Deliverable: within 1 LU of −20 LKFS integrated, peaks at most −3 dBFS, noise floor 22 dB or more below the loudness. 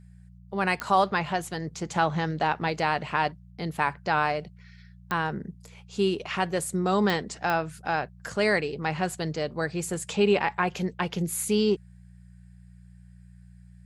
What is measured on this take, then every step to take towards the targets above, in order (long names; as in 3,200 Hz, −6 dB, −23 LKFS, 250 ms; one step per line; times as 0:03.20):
number of clicks 4; mains hum 60 Hz; hum harmonics up to 180 Hz; level of the hum −45 dBFS; integrated loudness −27.5 LKFS; sample peak −9.0 dBFS; target loudness −20.0 LKFS
→ click removal
hum removal 60 Hz, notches 3
level +7.5 dB
brickwall limiter −3 dBFS